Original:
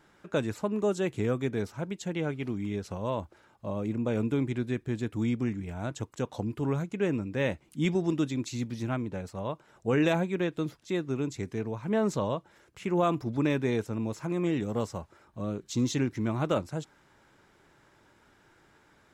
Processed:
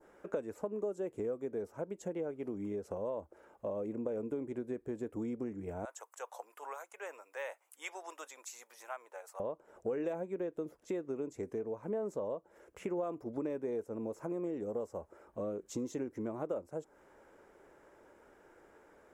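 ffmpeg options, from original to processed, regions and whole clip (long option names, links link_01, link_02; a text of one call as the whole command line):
ffmpeg -i in.wav -filter_complex "[0:a]asettb=1/sr,asplit=3[link_01][link_02][link_03];[link_01]atrim=end=5.854[link_04];[link_02]atrim=start=5.85:end=9.4,asetpts=PTS-STARTPTS,afade=type=in:duration=0.004:curve=qsin,afade=type=out:start_time=3.546:duration=0.004:curve=qsin,highpass=frequency=840:width=0.5412,highpass=frequency=840:width=1.3066,highshelf=frequency=8100:gain=8.5[link_05];[link_03]atrim=start=9.396[link_06];[link_04][link_05]acrossfade=duration=0.004:curve1=hsin:curve2=qsin[link_07];[link_07][link_06]acrossfade=duration=0.004:curve1=qsin:curve2=hsin,equalizer=frequency=125:width_type=o:width=1:gain=-11,equalizer=frequency=500:width_type=o:width=1:gain=11,equalizer=frequency=4000:width_type=o:width=1:gain=-12,acompressor=threshold=-34dB:ratio=4,adynamicequalizer=threshold=0.00126:dfrequency=2600:dqfactor=0.71:tfrequency=2600:tqfactor=0.71:attack=5:release=100:ratio=0.375:range=3.5:mode=cutabove:tftype=bell,volume=-2dB" out.wav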